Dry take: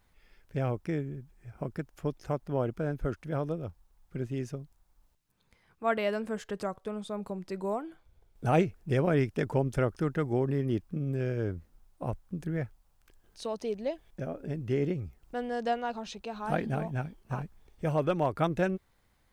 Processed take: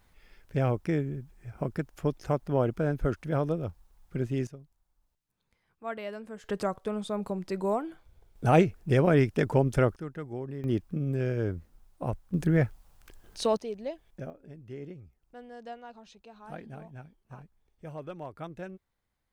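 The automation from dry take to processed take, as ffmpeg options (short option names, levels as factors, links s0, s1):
-af "asetnsamples=n=441:p=0,asendcmd='4.47 volume volume -8dB;6.44 volume volume 4dB;9.96 volume volume -8.5dB;10.64 volume volume 2dB;12.34 volume volume 9dB;13.57 volume volume -3dB;14.3 volume volume -12.5dB',volume=1.58"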